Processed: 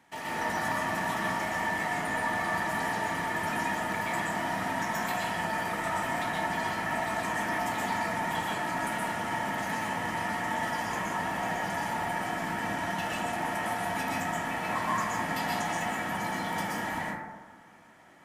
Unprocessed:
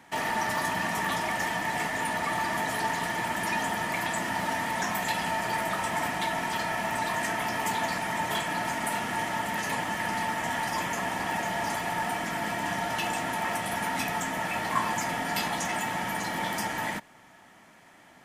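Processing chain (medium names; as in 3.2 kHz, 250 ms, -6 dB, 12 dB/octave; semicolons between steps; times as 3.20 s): plate-style reverb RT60 1.3 s, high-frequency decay 0.25×, pre-delay 110 ms, DRR -6 dB; trim -8.5 dB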